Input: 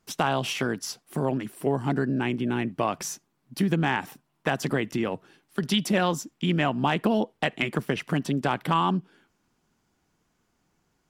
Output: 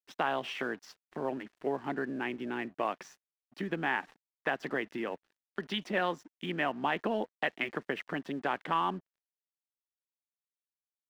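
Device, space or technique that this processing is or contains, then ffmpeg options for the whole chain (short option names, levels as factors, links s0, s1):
pocket radio on a weak battery: -af "highpass=300,lowpass=3100,aeval=exprs='sgn(val(0))*max(abs(val(0))-0.00251,0)':c=same,equalizer=f=1800:t=o:w=0.31:g=5,volume=0.531"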